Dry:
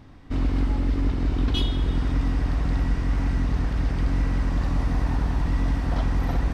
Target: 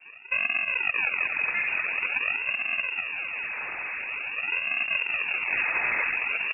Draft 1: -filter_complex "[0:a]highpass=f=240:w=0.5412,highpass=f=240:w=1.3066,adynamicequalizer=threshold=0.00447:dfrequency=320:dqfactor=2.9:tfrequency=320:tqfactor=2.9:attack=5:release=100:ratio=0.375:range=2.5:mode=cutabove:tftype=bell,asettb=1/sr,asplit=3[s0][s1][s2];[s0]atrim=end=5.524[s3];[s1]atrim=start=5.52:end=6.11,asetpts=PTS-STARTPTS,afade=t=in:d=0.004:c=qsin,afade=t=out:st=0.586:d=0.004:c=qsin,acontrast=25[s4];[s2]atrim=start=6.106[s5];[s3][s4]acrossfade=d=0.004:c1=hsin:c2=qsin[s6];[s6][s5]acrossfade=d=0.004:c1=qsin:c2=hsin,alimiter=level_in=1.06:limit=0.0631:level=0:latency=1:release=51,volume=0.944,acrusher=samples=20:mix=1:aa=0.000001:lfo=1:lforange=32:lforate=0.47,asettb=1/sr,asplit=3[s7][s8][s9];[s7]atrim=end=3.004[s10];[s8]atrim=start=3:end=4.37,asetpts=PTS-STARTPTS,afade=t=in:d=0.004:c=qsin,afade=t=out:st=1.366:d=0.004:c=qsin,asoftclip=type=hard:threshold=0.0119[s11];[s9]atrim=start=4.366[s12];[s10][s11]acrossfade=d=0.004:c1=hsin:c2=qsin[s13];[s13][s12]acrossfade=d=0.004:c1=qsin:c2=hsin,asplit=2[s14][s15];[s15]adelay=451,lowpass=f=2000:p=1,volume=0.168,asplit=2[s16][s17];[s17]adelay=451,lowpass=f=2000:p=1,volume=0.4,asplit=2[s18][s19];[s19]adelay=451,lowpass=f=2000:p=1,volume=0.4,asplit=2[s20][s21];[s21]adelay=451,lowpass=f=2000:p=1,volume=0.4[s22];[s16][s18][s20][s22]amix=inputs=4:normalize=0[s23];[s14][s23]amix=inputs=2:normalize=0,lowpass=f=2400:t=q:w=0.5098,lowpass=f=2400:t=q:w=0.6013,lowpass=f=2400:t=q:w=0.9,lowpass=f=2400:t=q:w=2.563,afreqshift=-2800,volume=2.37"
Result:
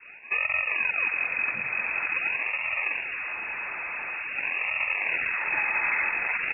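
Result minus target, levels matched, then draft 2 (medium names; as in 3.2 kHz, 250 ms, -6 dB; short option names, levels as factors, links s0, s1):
decimation with a swept rate: distortion -9 dB
-filter_complex "[0:a]highpass=f=240:w=0.5412,highpass=f=240:w=1.3066,adynamicequalizer=threshold=0.00447:dfrequency=320:dqfactor=2.9:tfrequency=320:tqfactor=2.9:attack=5:release=100:ratio=0.375:range=2.5:mode=cutabove:tftype=bell,asettb=1/sr,asplit=3[s0][s1][s2];[s0]atrim=end=5.524[s3];[s1]atrim=start=5.52:end=6.11,asetpts=PTS-STARTPTS,afade=t=in:d=0.004:c=qsin,afade=t=out:st=0.586:d=0.004:c=qsin,acontrast=25[s4];[s2]atrim=start=6.106[s5];[s3][s4]acrossfade=d=0.004:c1=hsin:c2=qsin[s6];[s6][s5]acrossfade=d=0.004:c1=qsin:c2=hsin,alimiter=level_in=1.06:limit=0.0631:level=0:latency=1:release=51,volume=0.944,acrusher=samples=53:mix=1:aa=0.000001:lfo=1:lforange=84.8:lforate=0.47,asettb=1/sr,asplit=3[s7][s8][s9];[s7]atrim=end=3.004[s10];[s8]atrim=start=3:end=4.37,asetpts=PTS-STARTPTS,afade=t=in:d=0.004:c=qsin,afade=t=out:st=1.366:d=0.004:c=qsin,asoftclip=type=hard:threshold=0.0119[s11];[s9]atrim=start=4.366[s12];[s10][s11]acrossfade=d=0.004:c1=hsin:c2=qsin[s13];[s13][s12]acrossfade=d=0.004:c1=qsin:c2=hsin,asplit=2[s14][s15];[s15]adelay=451,lowpass=f=2000:p=1,volume=0.168,asplit=2[s16][s17];[s17]adelay=451,lowpass=f=2000:p=1,volume=0.4,asplit=2[s18][s19];[s19]adelay=451,lowpass=f=2000:p=1,volume=0.4,asplit=2[s20][s21];[s21]adelay=451,lowpass=f=2000:p=1,volume=0.4[s22];[s16][s18][s20][s22]amix=inputs=4:normalize=0[s23];[s14][s23]amix=inputs=2:normalize=0,lowpass=f=2400:t=q:w=0.5098,lowpass=f=2400:t=q:w=0.6013,lowpass=f=2400:t=q:w=0.9,lowpass=f=2400:t=q:w=2.563,afreqshift=-2800,volume=2.37"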